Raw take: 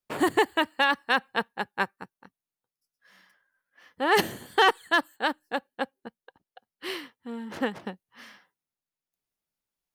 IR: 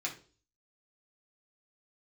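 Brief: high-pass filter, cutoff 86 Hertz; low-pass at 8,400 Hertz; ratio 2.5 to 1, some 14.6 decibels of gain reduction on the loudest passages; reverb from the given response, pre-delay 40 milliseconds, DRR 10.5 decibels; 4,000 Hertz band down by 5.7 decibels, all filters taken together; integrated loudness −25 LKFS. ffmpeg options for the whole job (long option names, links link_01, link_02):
-filter_complex "[0:a]highpass=86,lowpass=8400,equalizer=frequency=4000:width_type=o:gain=-8.5,acompressor=threshold=-40dB:ratio=2.5,asplit=2[link_01][link_02];[1:a]atrim=start_sample=2205,adelay=40[link_03];[link_02][link_03]afir=irnorm=-1:irlink=0,volume=-13.5dB[link_04];[link_01][link_04]amix=inputs=2:normalize=0,volume=15.5dB"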